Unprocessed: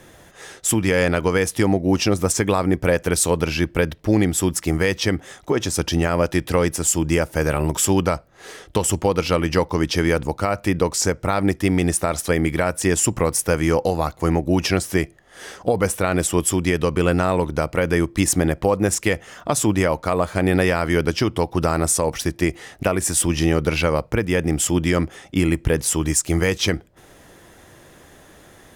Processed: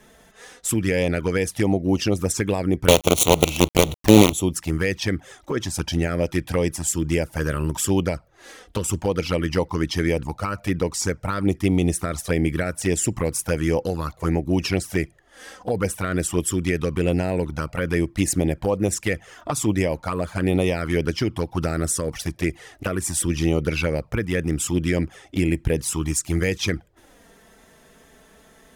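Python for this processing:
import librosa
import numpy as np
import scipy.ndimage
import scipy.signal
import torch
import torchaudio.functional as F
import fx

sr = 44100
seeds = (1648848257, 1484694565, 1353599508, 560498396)

y = fx.quant_companded(x, sr, bits=2, at=(2.88, 4.33))
y = fx.low_shelf(y, sr, hz=290.0, db=2.0, at=(11.46, 12.63))
y = fx.env_flanger(y, sr, rest_ms=4.9, full_db=-13.0)
y = y * 10.0 ** (-1.5 / 20.0)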